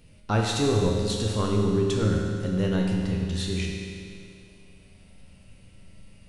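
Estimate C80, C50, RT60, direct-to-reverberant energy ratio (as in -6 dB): 2.0 dB, 0.5 dB, 2.4 s, -1.5 dB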